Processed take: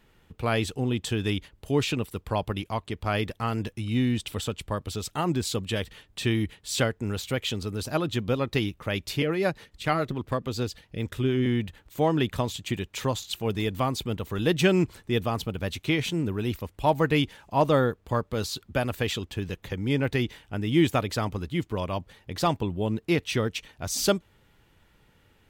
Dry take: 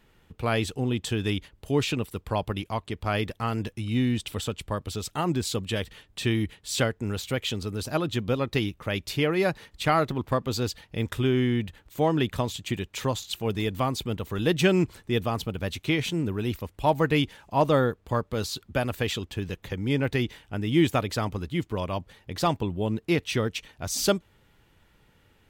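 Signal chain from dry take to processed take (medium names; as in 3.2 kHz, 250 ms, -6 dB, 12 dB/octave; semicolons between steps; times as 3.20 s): 9.22–11.46 s: rotary cabinet horn 7 Hz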